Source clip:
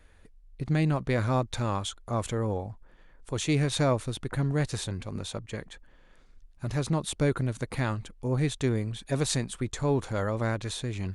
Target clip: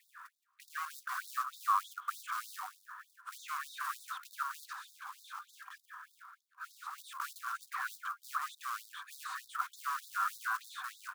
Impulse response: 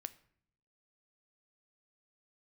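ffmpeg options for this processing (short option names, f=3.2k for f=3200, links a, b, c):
-filter_complex "[0:a]asplit=2[a][b];[b]highpass=f=720:p=1,volume=32dB,asoftclip=type=tanh:threshold=-11.5dB[c];[a][c]amix=inputs=2:normalize=0,lowpass=f=7.2k:p=1,volume=-6dB,acrossover=split=390 2100:gain=0.0794 1 0.2[d][e][f];[d][e][f]amix=inputs=3:normalize=0,asplit=2[g][h];[h]adelay=170,highpass=300,lowpass=3.4k,asoftclip=type=hard:threshold=-17.5dB,volume=-16dB[i];[g][i]amix=inputs=2:normalize=0,asoftclip=type=tanh:threshold=-23dB,asuperstop=centerf=850:order=4:qfactor=3.1,bandreject=f=200.8:t=h:w=4,bandreject=f=401.6:t=h:w=4,bandreject=f=602.4:t=h:w=4,bandreject=f=803.2:t=h:w=4,bandreject=f=1.004k:t=h:w=4,bandreject=f=1.2048k:t=h:w=4,bandreject=f=1.4056k:t=h:w=4,bandreject=f=1.6064k:t=h:w=4,asettb=1/sr,asplit=3[j][k][l];[j]atrim=end=4.734[m];[k]atrim=start=4.73:end=6.98,asetpts=PTS-STARTPTS,afade=t=in:d=0.004:c=qsin,afade=t=out:st=2.246:d=0.004:c=qsin,asoftclip=type=hard:threshold=-35.5dB[n];[l]atrim=start=6.976[o];[m][n]acrossfade=d=0.004:c1=hsin:c2=qsin[p];[p][o]acrossfade=d=0.004:c1=qsin:c2=hsin,firequalizer=gain_entry='entry(310,0);entry(480,-2);entry(1300,0);entry(2000,-20)':delay=0.05:min_phase=1,acrusher=bits=5:mode=log:mix=0:aa=0.000001,afftfilt=real='re*gte(b*sr/1024,750*pow(3600/750,0.5+0.5*sin(2*PI*3.3*pts/sr)))':imag='im*gte(b*sr/1024,750*pow(3600/750,0.5+0.5*sin(2*PI*3.3*pts/sr)))':win_size=1024:overlap=0.75,volume=2dB"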